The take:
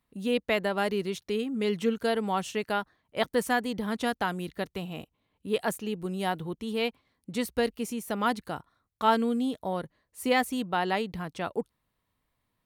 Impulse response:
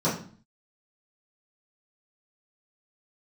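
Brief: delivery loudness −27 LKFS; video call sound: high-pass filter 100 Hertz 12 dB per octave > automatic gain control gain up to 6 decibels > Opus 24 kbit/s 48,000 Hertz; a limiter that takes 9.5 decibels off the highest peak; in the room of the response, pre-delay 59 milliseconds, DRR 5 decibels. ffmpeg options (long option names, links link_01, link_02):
-filter_complex "[0:a]alimiter=limit=-20.5dB:level=0:latency=1,asplit=2[link_01][link_02];[1:a]atrim=start_sample=2205,adelay=59[link_03];[link_02][link_03]afir=irnorm=-1:irlink=0,volume=-18dB[link_04];[link_01][link_04]amix=inputs=2:normalize=0,highpass=100,dynaudnorm=maxgain=6dB,volume=3dB" -ar 48000 -c:a libopus -b:a 24k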